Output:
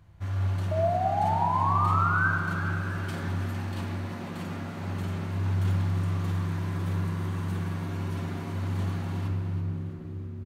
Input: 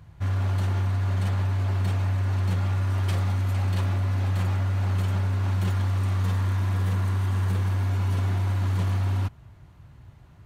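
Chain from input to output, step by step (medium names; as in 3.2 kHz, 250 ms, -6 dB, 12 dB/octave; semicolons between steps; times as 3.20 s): painted sound rise, 0.71–2.31 s, 620–1600 Hz -22 dBFS; frequency-shifting echo 330 ms, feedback 54%, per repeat +69 Hz, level -12 dB; on a send at -1 dB: reverberation RT60 3.0 s, pre-delay 3 ms; on the sum: trim -6.5 dB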